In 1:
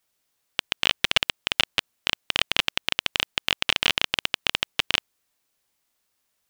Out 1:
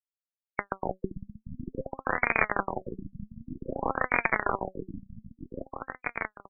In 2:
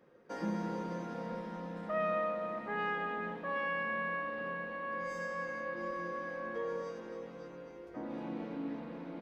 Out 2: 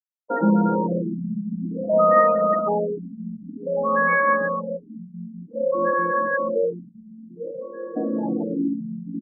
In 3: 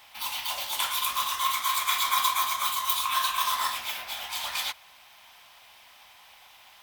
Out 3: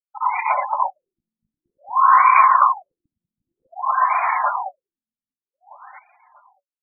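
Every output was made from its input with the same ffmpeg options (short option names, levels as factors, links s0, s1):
-af "lowpass=3700,afftfilt=real='re*gte(hypot(re,im),0.0224)':imag='im*gte(hypot(re,im),0.0224)':win_size=1024:overlap=0.75,equalizer=f=1000:w=0.36:g=3.5,aecho=1:1:635|1270|1905:0.335|0.0971|0.0282,crystalizer=i=1:c=0,asoftclip=type=hard:threshold=0.282,flanger=delay=3.7:depth=1.6:regen=73:speed=0.52:shape=sinusoidal,alimiter=level_in=10.6:limit=0.891:release=50:level=0:latency=1,afftfilt=real='re*lt(b*sr/1024,230*pow(2500/230,0.5+0.5*sin(2*PI*0.53*pts/sr)))':imag='im*lt(b*sr/1024,230*pow(2500/230,0.5+0.5*sin(2*PI*0.53*pts/sr)))':win_size=1024:overlap=0.75,volume=0.891"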